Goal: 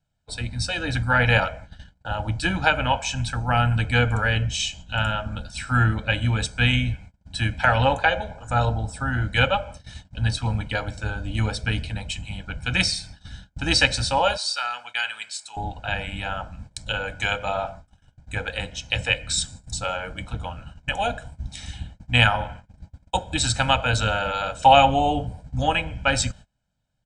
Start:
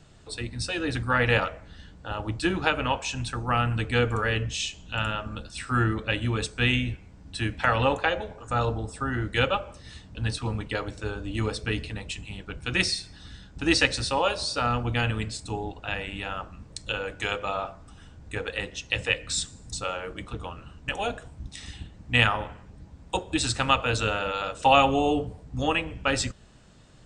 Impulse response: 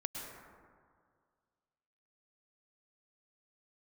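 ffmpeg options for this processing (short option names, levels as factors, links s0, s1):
-filter_complex "[0:a]asettb=1/sr,asplit=3[s0][s1][s2];[s0]atrim=end=14.374[s3];[s1]atrim=start=14.37:end=15.57,asetpts=PTS-STARTPTS,afade=t=in:d=0.004:c=qsin,afade=t=out:st=1.196:d=0.004:c=qsin,highpass=1400[s4];[s2]atrim=start=15.566[s5];[s3][s4]acrossfade=d=0.004:c1=hsin:c2=qsin[s6];[s6][s5]acrossfade=d=0.004:c1=qsin:c2=hsin,agate=range=0.0398:threshold=0.00631:ratio=16:detection=peak,aecho=1:1:1.3:0.78,volume=1.26"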